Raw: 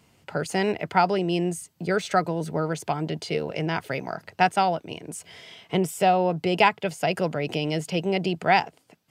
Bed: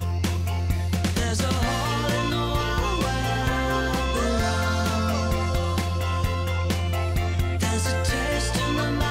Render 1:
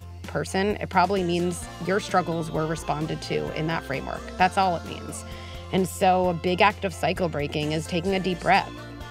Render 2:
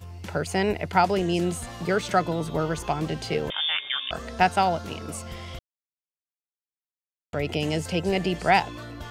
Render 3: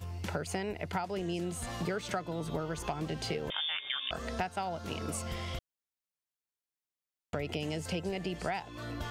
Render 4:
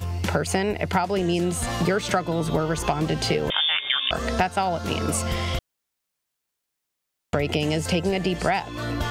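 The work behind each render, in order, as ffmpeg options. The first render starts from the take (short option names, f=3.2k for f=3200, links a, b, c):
-filter_complex "[1:a]volume=-14.5dB[a];[0:a][a]amix=inputs=2:normalize=0"
-filter_complex "[0:a]asettb=1/sr,asplit=3[a][b][c];[a]atrim=end=3.504[d];[b]atrim=start=3.5:end=4.11,asetpts=PTS-STARTPTS,afade=t=in:d=0.004:c=qsin,afade=t=out:st=0.606:d=0.004:c=qsin,lowpass=f=3.1k:t=q:w=0.5098,lowpass=f=3.1k:t=q:w=0.6013,lowpass=f=3.1k:t=q:w=0.9,lowpass=f=3.1k:t=q:w=2.563,afreqshift=-3700[e];[c]atrim=start=4.106[f];[d][e]acrossfade=d=0.004:c1=hsin:c2=qsin[g];[g][f]acrossfade=d=0.004:c1=qsin:c2=hsin,asplit=3[h][i][j];[h]atrim=end=5.59,asetpts=PTS-STARTPTS,afade=t=out:st=5.586:d=0.004:c=hsin[k];[i]atrim=start=5.59:end=7.33,asetpts=PTS-STARTPTS,volume=0[l];[j]atrim=start=7.33,asetpts=PTS-STARTPTS,afade=t=in:d=0.004:c=hsin[m];[k][l][m]concat=n=3:v=0:a=1"
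-af "acompressor=threshold=-31dB:ratio=12"
-af "volume=12dB"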